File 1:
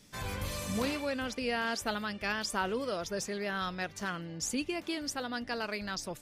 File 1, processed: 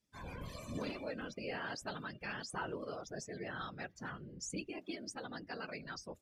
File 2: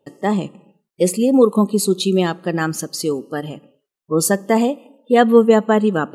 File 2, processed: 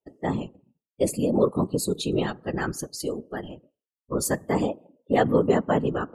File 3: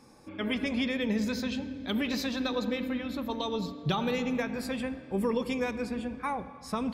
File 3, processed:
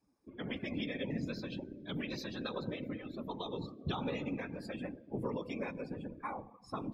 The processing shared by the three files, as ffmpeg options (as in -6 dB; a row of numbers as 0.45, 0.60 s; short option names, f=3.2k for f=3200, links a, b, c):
-af "afftfilt=real='hypot(re,im)*cos(2*PI*random(0))':imag='hypot(re,im)*sin(2*PI*random(1))':win_size=512:overlap=0.75,afftdn=nr=17:nf=-48,volume=-2.5dB"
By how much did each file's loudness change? -9.0, -8.5, -9.0 LU